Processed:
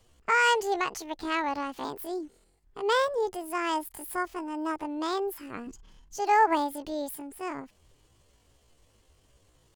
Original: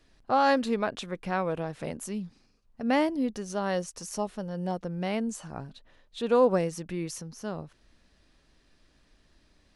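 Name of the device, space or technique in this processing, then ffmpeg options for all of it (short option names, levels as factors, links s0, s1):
chipmunk voice: -filter_complex "[0:a]asettb=1/sr,asplit=3[s0][s1][s2];[s0]atrim=end=5.674[s3];[s1]atrim=start=5.67:end=6.21,asetpts=PTS-STARTPTS,afade=t=in:d=0.004:c=qsin,afade=t=out:st=0.536:d=0.004:c=qsin,lowshelf=f=220:t=q:w=1.5:g=6.5[s4];[s2]atrim=start=6.206[s5];[s3][s4]acrossfade=d=0.004:c1=hsin:c2=qsin[s6];[s6][s5]acrossfade=d=0.004:c1=qsin:c2=hsin,asetrate=76340,aresample=44100,atempo=0.577676"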